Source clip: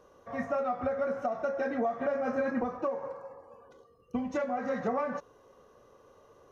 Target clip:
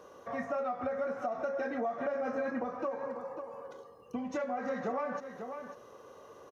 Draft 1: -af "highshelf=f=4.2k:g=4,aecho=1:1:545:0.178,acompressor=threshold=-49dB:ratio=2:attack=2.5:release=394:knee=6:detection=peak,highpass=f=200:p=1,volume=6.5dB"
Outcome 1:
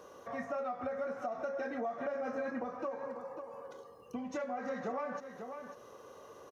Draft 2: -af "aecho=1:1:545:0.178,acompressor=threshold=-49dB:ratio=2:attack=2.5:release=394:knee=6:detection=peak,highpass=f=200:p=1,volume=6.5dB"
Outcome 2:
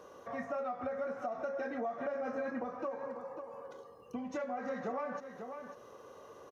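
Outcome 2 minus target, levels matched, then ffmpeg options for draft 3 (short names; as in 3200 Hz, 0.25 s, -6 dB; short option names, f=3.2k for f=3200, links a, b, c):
compressor: peak gain reduction +3 dB
-af "aecho=1:1:545:0.178,acompressor=threshold=-42.5dB:ratio=2:attack=2.5:release=394:knee=6:detection=peak,highpass=f=200:p=1,volume=6.5dB"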